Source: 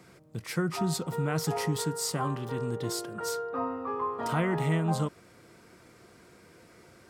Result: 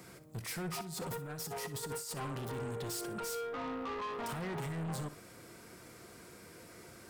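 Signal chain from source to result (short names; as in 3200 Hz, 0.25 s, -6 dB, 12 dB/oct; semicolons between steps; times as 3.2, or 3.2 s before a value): high shelf 8400 Hz +11.5 dB; 0.81–2.17 negative-ratio compressor -35 dBFS, ratio -0.5; limiter -25 dBFS, peak gain reduction 11 dB; soft clip -37.5 dBFS, distortion -8 dB; flutter echo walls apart 10.4 m, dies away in 0.27 s; gain +1 dB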